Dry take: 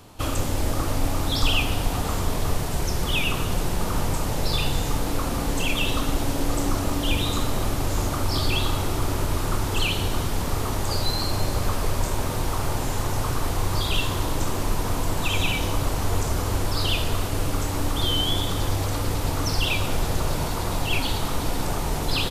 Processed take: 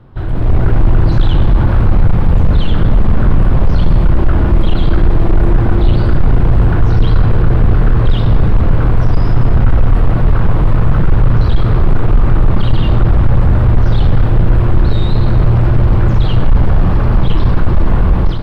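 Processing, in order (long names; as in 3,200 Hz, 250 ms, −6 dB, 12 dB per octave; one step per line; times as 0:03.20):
hard clipping −24 dBFS, distortion −8 dB
low-shelf EQ 190 Hz +12 dB
automatic gain control gain up to 12 dB
speed change +21%
high-frequency loss of the air 460 metres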